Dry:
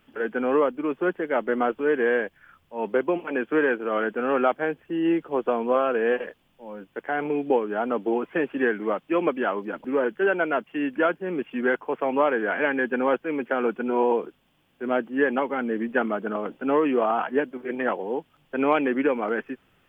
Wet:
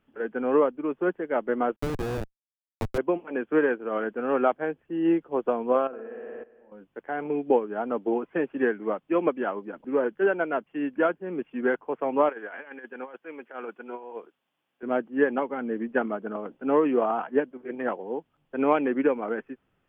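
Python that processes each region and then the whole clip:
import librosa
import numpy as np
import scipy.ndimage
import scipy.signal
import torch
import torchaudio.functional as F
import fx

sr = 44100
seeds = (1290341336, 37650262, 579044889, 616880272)

y = fx.chain(x, sr, fx.lowpass(hz=2900.0, slope=24),
    fx.schmitt(flips_db=-20.5),
    fx.band_squash(depth_pct=70), at=(1.76, 2.98))
y = fx.chain(y, sr, fx.lowpass(hz=1600.0, slope=6),
    fx.room_flutter(wall_m=10.0, rt60_s=1.4),
    fx.level_steps(step_db=16), at=(5.87, 6.72))
y = fx.chain(y, sr, fx.highpass(hz=1000.0, slope=6),
    fx.over_compress(threshold_db=-30.0, ratio=-0.5), at=(12.29, 14.83))
y = fx.high_shelf(y, sr, hz=2100.0, db=-10.5)
y = fx.upward_expand(y, sr, threshold_db=-36.0, expansion=1.5)
y = F.gain(torch.from_numpy(y), 1.5).numpy()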